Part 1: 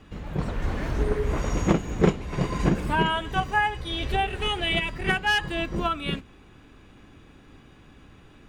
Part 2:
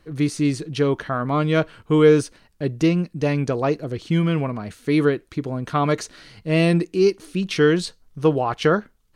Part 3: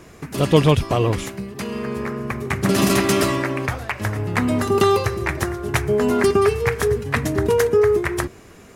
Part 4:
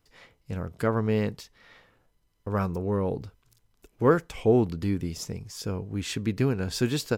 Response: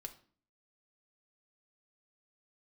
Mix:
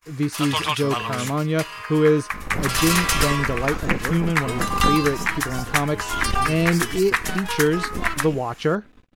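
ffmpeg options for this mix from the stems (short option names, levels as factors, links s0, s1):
-filter_complex "[0:a]aecho=1:1:4:0.58,acrossover=split=330[s0][s1];[s1]acompressor=threshold=0.0631:ratio=6[s2];[s0][s2]amix=inputs=2:normalize=0,aeval=exprs='max(val(0),0)':c=same,adelay=2200,volume=1.26[s3];[1:a]volume=0.562,asplit=2[s4][s5];[2:a]highpass=f=980:w=0.5412,highpass=f=980:w=1.3066,volume=1.33[s6];[3:a]acompressor=mode=upward:threshold=0.00708:ratio=2.5,aexciter=amount=4.1:drive=7:freq=4700,volume=0.237[s7];[s5]apad=whole_len=471403[s8];[s3][s8]sidechaincompress=threshold=0.0224:ratio=3:attack=7.8:release=294[s9];[s9][s4][s6][s7]amix=inputs=4:normalize=0,agate=range=0.0141:threshold=0.00398:ratio=16:detection=peak,lowshelf=f=390:g=4"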